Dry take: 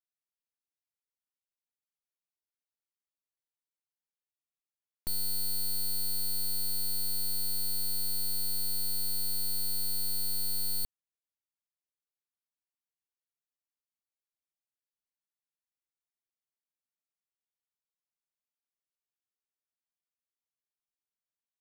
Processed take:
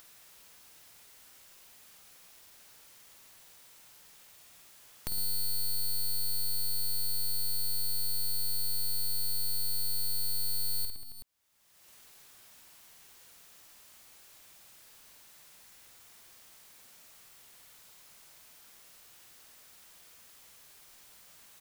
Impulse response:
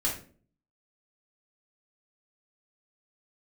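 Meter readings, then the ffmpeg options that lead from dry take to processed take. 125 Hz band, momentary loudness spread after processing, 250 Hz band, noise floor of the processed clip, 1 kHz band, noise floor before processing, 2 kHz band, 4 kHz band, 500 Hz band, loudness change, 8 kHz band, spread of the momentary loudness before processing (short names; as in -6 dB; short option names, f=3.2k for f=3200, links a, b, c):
+0.5 dB, 3 LU, -3.5 dB, -57 dBFS, +0.5 dB, under -85 dBFS, +3.0 dB, +0.5 dB, -1.0 dB, -0.5 dB, -1.0 dB, 1 LU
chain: -filter_complex "[0:a]asplit=2[a][b];[b]aecho=0:1:50|110|182|268.4|372.1:0.631|0.398|0.251|0.158|0.1[c];[a][c]amix=inputs=2:normalize=0,acompressor=mode=upward:threshold=-30dB:ratio=2.5,equalizer=f=300:w=1.2:g=-3,acompressor=threshold=-45dB:ratio=1.5,volume=1.5dB"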